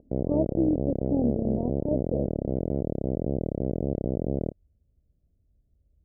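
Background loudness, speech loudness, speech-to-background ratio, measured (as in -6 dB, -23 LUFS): -29.5 LUFS, -30.0 LUFS, -0.5 dB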